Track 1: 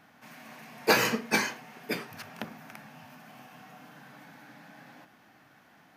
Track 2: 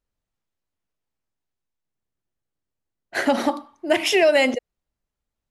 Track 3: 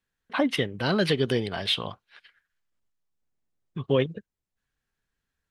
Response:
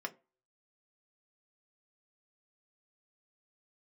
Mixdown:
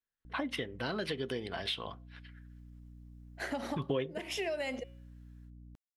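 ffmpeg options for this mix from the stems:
-filter_complex "[1:a]bandreject=f=182.6:t=h:w=4,bandreject=f=365.2:t=h:w=4,bandreject=f=547.8:t=h:w=4,bandreject=f=730.4:t=h:w=4,bandreject=f=913:t=h:w=4,bandreject=f=1.0956k:t=h:w=4,bandreject=f=1.2782k:t=h:w=4,bandreject=f=1.4608k:t=h:w=4,bandreject=f=1.6434k:t=h:w=4,bandreject=f=1.826k:t=h:w=4,bandreject=f=2.0086k:t=h:w=4,bandreject=f=2.1912k:t=h:w=4,bandreject=f=2.3738k:t=h:w=4,bandreject=f=2.5564k:t=h:w=4,bandreject=f=2.739k:t=h:w=4,bandreject=f=2.9216k:t=h:w=4,bandreject=f=3.1042k:t=h:w=4,bandreject=f=3.2868k:t=h:w=4,bandreject=f=3.4694k:t=h:w=4,bandreject=f=3.652k:t=h:w=4,bandreject=f=3.8346k:t=h:w=4,aeval=exprs='val(0)+0.0141*(sin(2*PI*60*n/s)+sin(2*PI*2*60*n/s)/2+sin(2*PI*3*60*n/s)/3+sin(2*PI*4*60*n/s)/4+sin(2*PI*5*60*n/s)/5)':c=same,adelay=250,volume=-13.5dB[a];[2:a]bandreject=f=1.2k:w=24,dynaudnorm=f=170:g=3:m=10dB,volume=-5.5dB,afade=t=in:st=2.28:d=0.31:silence=0.281838,asplit=2[b][c];[c]volume=-6.5dB[d];[3:a]atrim=start_sample=2205[e];[d][e]afir=irnorm=-1:irlink=0[f];[a][b][f]amix=inputs=3:normalize=0,acompressor=threshold=-33dB:ratio=4"

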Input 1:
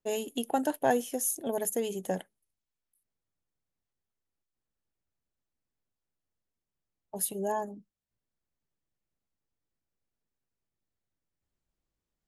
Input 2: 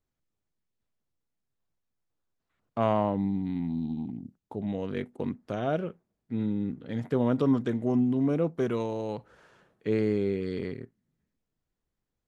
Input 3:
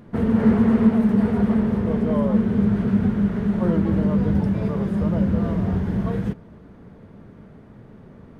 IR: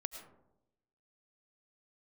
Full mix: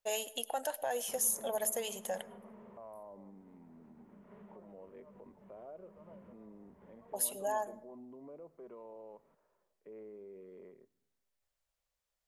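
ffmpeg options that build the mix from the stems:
-filter_complex "[0:a]lowshelf=f=430:t=q:w=3:g=-7,alimiter=limit=-23dB:level=0:latency=1:release=119,volume=1dB,asplit=2[a][b];[b]volume=-9dB[c];[1:a]bandpass=f=350:t=q:w=0.53:csg=0,volume=-13.5dB,asplit=3[d][e][f];[e]volume=-16dB[g];[2:a]acompressor=threshold=-26dB:ratio=4,adelay=950,volume=-17dB,asplit=2[h][i];[i]volume=-17.5dB[j];[f]apad=whole_len=412090[k];[h][k]sidechaincompress=threshold=-52dB:ratio=8:attack=28:release=287[l];[d][l]amix=inputs=2:normalize=0,highpass=f=160:w=0.5412,highpass=f=160:w=1.3066,equalizer=f=270:t=q:w=4:g=-4,equalizer=f=390:t=q:w=4:g=5,equalizer=f=590:t=q:w=4:g=10,equalizer=f=1k:t=q:w=4:g=8,equalizer=f=1.6k:t=q:w=4:g=-6,lowpass=f=3k:w=0.5412,lowpass=f=3k:w=1.3066,alimiter=level_in=11.5dB:limit=-24dB:level=0:latency=1:release=46,volume=-11.5dB,volume=0dB[m];[3:a]atrim=start_sample=2205[n];[c][g][j]amix=inputs=3:normalize=0[o];[o][n]afir=irnorm=-1:irlink=0[p];[a][m][p]amix=inputs=3:normalize=0,equalizer=f=260:w=0.36:g=-10"

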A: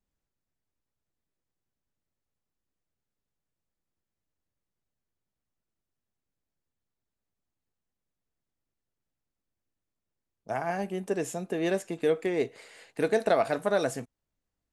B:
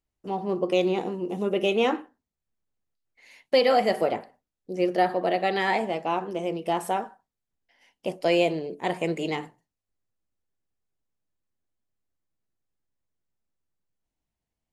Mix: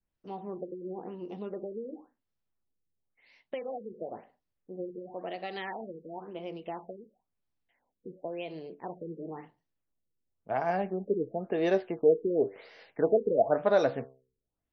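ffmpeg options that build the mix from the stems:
-filter_complex "[0:a]adynamicequalizer=threshold=0.0126:dfrequency=600:dqfactor=0.97:tfrequency=600:tqfactor=0.97:attack=5:release=100:ratio=0.375:range=3:mode=boostabove:tftype=bell,flanger=delay=7.8:depth=9.1:regen=79:speed=0.17:shape=triangular,volume=2dB[a];[1:a]adynamicequalizer=threshold=0.00708:dfrequency=3000:dqfactor=2.2:tfrequency=3000:tqfactor=2.2:attack=5:release=100:ratio=0.375:range=2:mode=boostabove:tftype=bell,acompressor=threshold=-24dB:ratio=6,volume=-9.5dB[b];[a][b]amix=inputs=2:normalize=0,aexciter=amount=9.6:drive=1.2:freq=9.2k,afftfilt=real='re*lt(b*sr/1024,500*pow(6300/500,0.5+0.5*sin(2*PI*0.96*pts/sr)))':imag='im*lt(b*sr/1024,500*pow(6300/500,0.5+0.5*sin(2*PI*0.96*pts/sr)))':win_size=1024:overlap=0.75"

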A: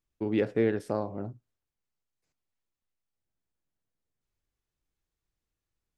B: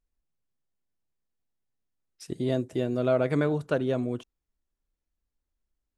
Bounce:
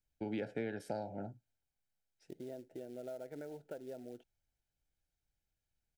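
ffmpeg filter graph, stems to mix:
-filter_complex "[0:a]aecho=1:1:1.3:0.46,acrossover=split=180|1500[a][b][c];[a]acompressor=threshold=-51dB:ratio=4[d];[b]acompressor=threshold=-33dB:ratio=4[e];[c]acompressor=threshold=-46dB:ratio=4[f];[d][e][f]amix=inputs=3:normalize=0,volume=-3.5dB[g];[1:a]bandpass=f=630:t=q:w=0.82:csg=0,acrusher=bits=5:mode=log:mix=0:aa=0.000001,acompressor=threshold=-37dB:ratio=4,volume=-7.5dB[h];[g][h]amix=inputs=2:normalize=0,asuperstop=centerf=1100:order=8:qfactor=2.7"

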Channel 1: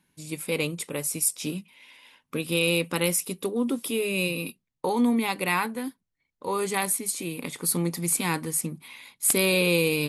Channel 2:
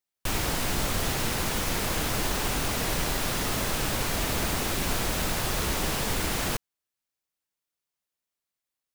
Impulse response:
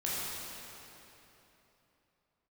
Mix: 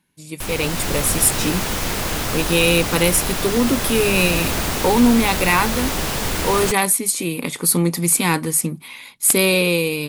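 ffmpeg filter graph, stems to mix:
-filter_complex "[0:a]volume=1dB[a];[1:a]adelay=150,volume=-2.5dB[b];[a][b]amix=inputs=2:normalize=0,dynaudnorm=f=150:g=9:m=11.5dB,asoftclip=type=tanh:threshold=-2.5dB"

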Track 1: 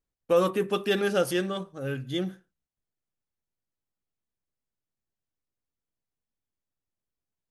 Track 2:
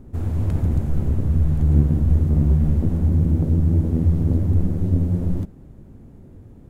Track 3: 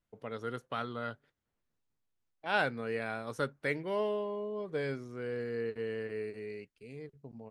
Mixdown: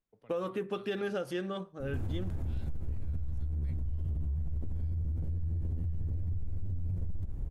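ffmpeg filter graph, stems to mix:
-filter_complex "[0:a]lowpass=f=2.8k:p=1,alimiter=limit=-17dB:level=0:latency=1:release=262,volume=-4dB[a];[1:a]acompressor=threshold=-22dB:ratio=6,asubboost=boost=10:cutoff=71,adelay=1800,volume=-1.5dB[b];[2:a]acrossover=split=130|3000[c][d][e];[d]acompressor=threshold=-48dB:ratio=5[f];[c][f][e]amix=inputs=3:normalize=0,volume=-10.5dB[g];[b][g]amix=inputs=2:normalize=0,alimiter=limit=-22.5dB:level=0:latency=1:release=45,volume=0dB[h];[a][h]amix=inputs=2:normalize=0,acompressor=threshold=-30dB:ratio=6"

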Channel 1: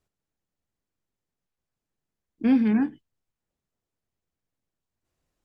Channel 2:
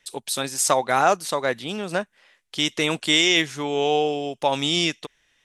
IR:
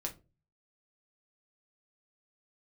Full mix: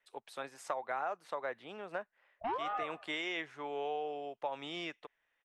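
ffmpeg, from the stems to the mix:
-filter_complex "[0:a]highpass=f=460:p=1,aeval=exprs='val(0)*sin(2*PI*590*n/s+590*0.75/1.1*sin(2*PI*1.1*n/s))':c=same,volume=-0.5dB,asplit=2[a][b];[b]volume=-18.5dB[c];[1:a]highshelf=f=3.7k:g=-8,volume=-9.5dB[d];[c]aecho=0:1:89|178|267|356|445|534:1|0.42|0.176|0.0741|0.0311|0.0131[e];[a][d][e]amix=inputs=3:normalize=0,acrossover=split=440 2500:gain=0.178 1 0.158[f][g][h];[f][g][h]amix=inputs=3:normalize=0,acompressor=threshold=-33dB:ratio=6"

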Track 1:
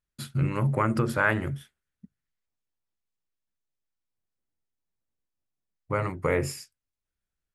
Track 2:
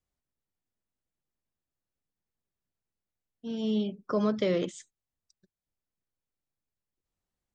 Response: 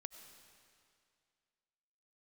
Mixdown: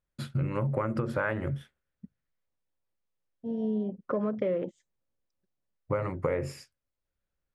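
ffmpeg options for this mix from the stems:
-filter_complex "[0:a]volume=2.5dB[a];[1:a]afwtdn=0.00891,volume=2dB[b];[a][b]amix=inputs=2:normalize=0,lowpass=f=2.1k:p=1,equalizer=f=540:t=o:w=0.24:g=8,acompressor=threshold=-26dB:ratio=6"

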